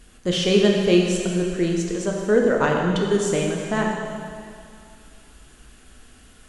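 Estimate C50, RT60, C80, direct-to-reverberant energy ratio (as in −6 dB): 1.5 dB, 2.3 s, 3.0 dB, −0.5 dB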